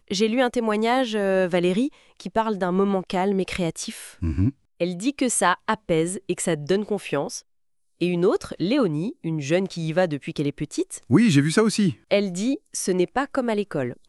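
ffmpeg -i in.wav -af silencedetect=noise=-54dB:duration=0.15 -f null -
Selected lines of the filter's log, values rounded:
silence_start: 4.54
silence_end: 4.80 | silence_duration: 0.26
silence_start: 7.42
silence_end: 8.01 | silence_duration: 0.58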